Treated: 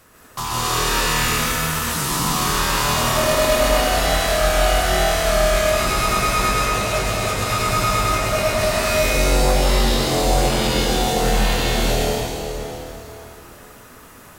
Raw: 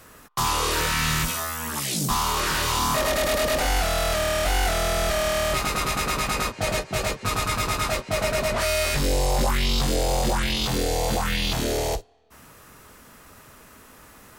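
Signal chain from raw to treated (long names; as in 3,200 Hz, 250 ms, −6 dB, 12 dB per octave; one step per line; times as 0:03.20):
dense smooth reverb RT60 3.6 s, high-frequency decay 0.8×, pre-delay 115 ms, DRR −7.5 dB
level −3 dB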